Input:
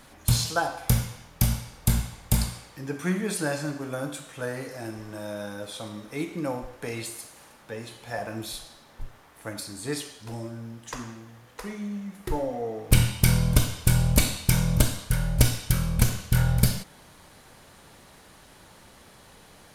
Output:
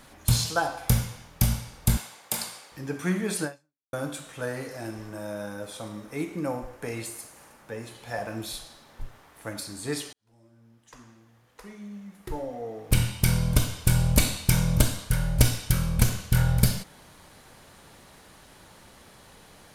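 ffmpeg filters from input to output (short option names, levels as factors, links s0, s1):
-filter_complex "[0:a]asettb=1/sr,asplit=3[s0][s1][s2];[s0]atrim=end=1.974[s3];[s1]atrim=start=1.97:end=2.72,asetpts=PTS-STARTPTS,afade=t=in:d=0.004:c=qsin,afade=t=out:st=0.746:d=0.004:c=qsin,highpass=440[s4];[s2]atrim=start=2.716[s5];[s3][s4]acrossfade=d=0.004:c1=hsin:c2=qsin[s6];[s6][s5]acrossfade=d=0.004:c1=qsin:c2=hsin,asettb=1/sr,asplit=3[s7][s8][s9];[s7]atrim=end=5.094[s10];[s8]atrim=start=5.09:end=7.95,asetpts=PTS-STARTPTS,afade=t=in:d=0.004:c=qsin,afade=t=out:st=2.856:d=0.004:c=qsin,equalizer=f=3700:w=1.5:g=-5.5[s11];[s9]atrim=start=7.946[s12];[s10][s11]acrossfade=d=0.004:c1=hsin:c2=qsin[s13];[s13][s12]acrossfade=d=0.004:c1=qsin:c2=hsin,asplit=3[s14][s15][s16];[s14]atrim=end=3.93,asetpts=PTS-STARTPTS,afade=t=out:st=3.44:d=0.49:c=exp[s17];[s15]atrim=start=3.93:end=10.13,asetpts=PTS-STARTPTS,afade=t=in:d=0.004:c=hsin,afade=t=out:st=6.196:d=0.004:c=hsin[s18];[s16]atrim=start=10.13,asetpts=PTS-STARTPTS,afade=t=in:d=4.13[s19];[s17][s18][s19]concat=n=3:v=0:a=1"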